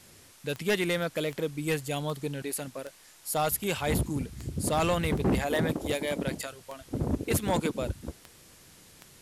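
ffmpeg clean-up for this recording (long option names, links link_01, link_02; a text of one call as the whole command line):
ffmpeg -i in.wav -af "adeclick=threshold=4,afftdn=noise_reduction=20:noise_floor=-55" out.wav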